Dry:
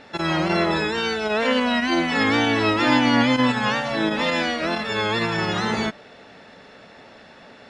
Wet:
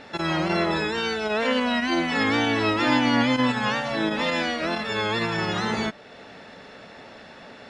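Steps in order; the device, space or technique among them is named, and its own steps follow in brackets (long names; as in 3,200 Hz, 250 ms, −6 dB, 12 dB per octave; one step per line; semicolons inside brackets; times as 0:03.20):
parallel compression (in parallel at −1.5 dB: downward compressor, threshold −38 dBFS, peak gain reduction 22 dB)
on the sum: level −3.5 dB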